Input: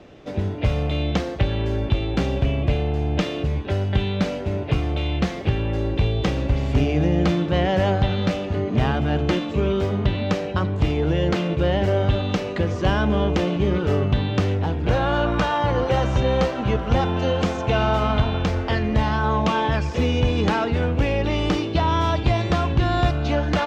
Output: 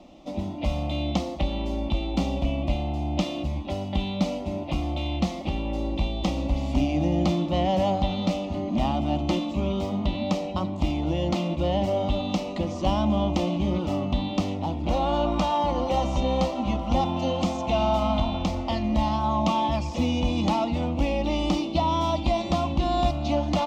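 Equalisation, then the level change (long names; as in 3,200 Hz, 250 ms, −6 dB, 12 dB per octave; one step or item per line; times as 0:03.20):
phaser with its sweep stopped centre 430 Hz, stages 6
0.0 dB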